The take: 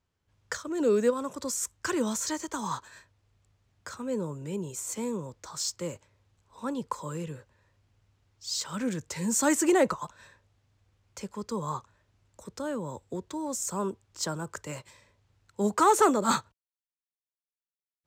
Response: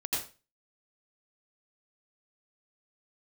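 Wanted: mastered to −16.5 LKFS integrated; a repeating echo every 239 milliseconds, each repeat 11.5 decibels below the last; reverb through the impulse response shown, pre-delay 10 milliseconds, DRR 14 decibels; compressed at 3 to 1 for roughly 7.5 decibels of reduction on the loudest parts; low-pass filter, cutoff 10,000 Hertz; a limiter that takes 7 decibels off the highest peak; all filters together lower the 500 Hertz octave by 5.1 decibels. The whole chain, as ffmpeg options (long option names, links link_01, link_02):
-filter_complex "[0:a]lowpass=10000,equalizer=frequency=500:width_type=o:gain=-6.5,acompressor=threshold=-29dB:ratio=3,alimiter=level_in=1.5dB:limit=-24dB:level=0:latency=1,volume=-1.5dB,aecho=1:1:239|478|717:0.266|0.0718|0.0194,asplit=2[link_01][link_02];[1:a]atrim=start_sample=2205,adelay=10[link_03];[link_02][link_03]afir=irnorm=-1:irlink=0,volume=-19.5dB[link_04];[link_01][link_04]amix=inputs=2:normalize=0,volume=19.5dB"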